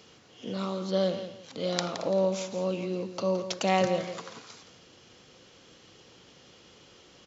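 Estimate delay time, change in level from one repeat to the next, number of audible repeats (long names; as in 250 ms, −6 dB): 169 ms, −11.5 dB, 2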